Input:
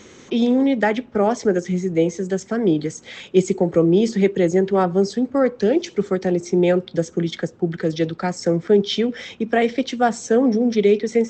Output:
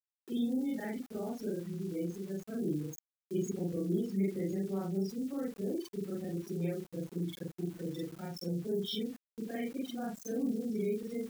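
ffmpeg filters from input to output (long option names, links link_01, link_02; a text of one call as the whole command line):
ffmpeg -i in.wav -filter_complex "[0:a]afftfilt=real='re':imag='-im':win_size=4096:overlap=0.75,afftdn=noise_reduction=33:noise_floor=-30,agate=range=-33dB:threshold=-33dB:ratio=3:detection=peak,acrossover=split=320|3000[link_01][link_02][link_03];[link_02]acompressor=threshold=-48dB:ratio=2[link_04];[link_01][link_04][link_03]amix=inputs=3:normalize=0,aeval=exprs='val(0)*gte(abs(val(0)),0.00562)':channel_layout=same,crystalizer=i=2:c=0,volume=-8dB" out.wav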